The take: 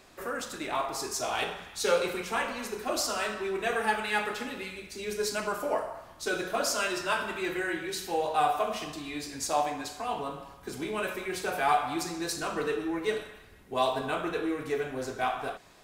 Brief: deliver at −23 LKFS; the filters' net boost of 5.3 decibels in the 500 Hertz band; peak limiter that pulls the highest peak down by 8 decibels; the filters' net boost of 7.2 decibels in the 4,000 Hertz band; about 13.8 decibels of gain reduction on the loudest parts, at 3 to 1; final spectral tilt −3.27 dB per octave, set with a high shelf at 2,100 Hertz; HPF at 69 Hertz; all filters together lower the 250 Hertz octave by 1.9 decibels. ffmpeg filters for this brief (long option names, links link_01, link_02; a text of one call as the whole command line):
ffmpeg -i in.wav -af "highpass=69,equalizer=frequency=250:width_type=o:gain=-8.5,equalizer=frequency=500:width_type=o:gain=8.5,highshelf=frequency=2100:gain=4,equalizer=frequency=4000:width_type=o:gain=5,acompressor=threshold=-33dB:ratio=3,volume=13.5dB,alimiter=limit=-14dB:level=0:latency=1" out.wav